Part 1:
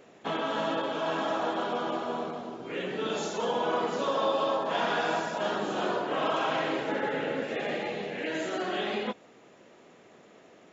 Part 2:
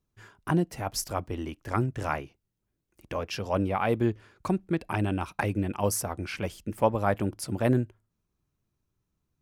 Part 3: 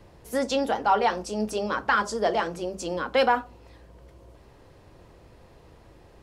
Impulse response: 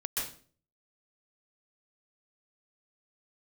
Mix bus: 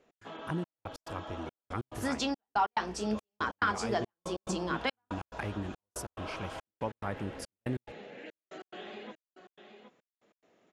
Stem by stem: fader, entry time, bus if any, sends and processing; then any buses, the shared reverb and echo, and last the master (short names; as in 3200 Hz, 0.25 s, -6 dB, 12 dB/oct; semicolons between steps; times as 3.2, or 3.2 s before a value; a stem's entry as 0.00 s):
-13.5 dB, 0.00 s, no send, echo send -9.5 dB, dry
-6.5 dB, 0.00 s, no send, no echo send, bell 650 Hz -5 dB 0.77 oct
+0.5 dB, 1.70 s, no send, no echo send, bell 530 Hz -12 dB 0.35 oct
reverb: off
echo: echo 0.769 s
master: LPF 9500 Hz 12 dB/oct; step gate "x.xxxx.." 141 bpm -60 dB; compressor 1.5:1, threshold -35 dBFS, peak gain reduction 6.5 dB